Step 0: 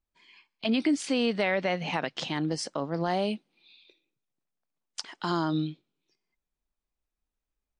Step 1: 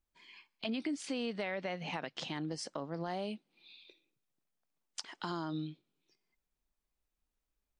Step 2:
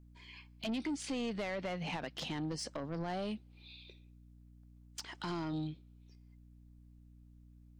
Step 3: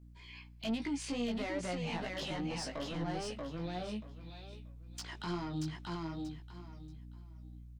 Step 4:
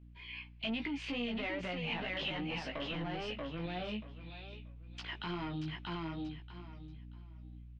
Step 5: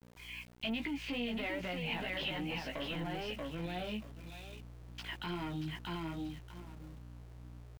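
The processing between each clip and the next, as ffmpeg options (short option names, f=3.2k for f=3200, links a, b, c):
-af "acompressor=threshold=-43dB:ratio=2"
-af "lowshelf=f=120:g=8.5,asoftclip=type=tanh:threshold=-34dB,aeval=exprs='val(0)+0.00112*(sin(2*PI*60*n/s)+sin(2*PI*2*60*n/s)/2+sin(2*PI*3*60*n/s)/3+sin(2*PI*4*60*n/s)/4+sin(2*PI*5*60*n/s)/5)':c=same,volume=2dB"
-filter_complex "[0:a]aecho=1:1:633|1266|1899:0.631|0.139|0.0305,asplit=2[a][b];[b]alimiter=level_in=10.5dB:limit=-24dB:level=0:latency=1,volume=-10.5dB,volume=-1dB[c];[a][c]amix=inputs=2:normalize=0,flanger=delay=16.5:depth=2.2:speed=2.4,volume=-1.5dB"
-af "alimiter=level_in=8dB:limit=-24dB:level=0:latency=1:release=29,volume=-8dB,lowpass=f=2.8k:t=q:w=2.7"
-af "anlmdn=0.000631,bandreject=f=1.2k:w=12,aeval=exprs='val(0)*gte(abs(val(0)),0.00237)':c=same"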